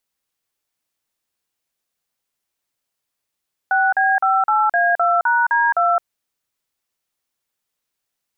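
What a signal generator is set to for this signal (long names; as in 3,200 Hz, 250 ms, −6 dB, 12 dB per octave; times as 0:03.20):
touch tones "6B58A2#D2", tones 215 ms, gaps 42 ms, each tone −16 dBFS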